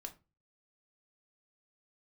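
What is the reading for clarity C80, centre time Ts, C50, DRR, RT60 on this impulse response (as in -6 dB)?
22.5 dB, 7 ms, 15.5 dB, 3.5 dB, 0.30 s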